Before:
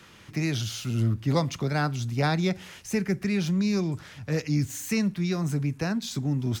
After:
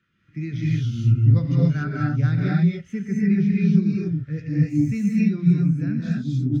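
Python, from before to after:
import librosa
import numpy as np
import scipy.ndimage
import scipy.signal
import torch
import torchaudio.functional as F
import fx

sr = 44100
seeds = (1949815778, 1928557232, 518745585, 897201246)

p1 = fx.curve_eq(x, sr, hz=(290.0, 900.0, 1400.0, 11000.0), db=(0, -11, 2, -7))
p2 = np.clip(p1, -10.0 ** (-20.5 / 20.0), 10.0 ** (-20.5 / 20.0))
p3 = p1 + F.gain(torch.from_numpy(p2), -6.5).numpy()
p4 = fx.rev_gated(p3, sr, seeds[0], gate_ms=310, shape='rising', drr_db=-4.0)
y = fx.spectral_expand(p4, sr, expansion=1.5)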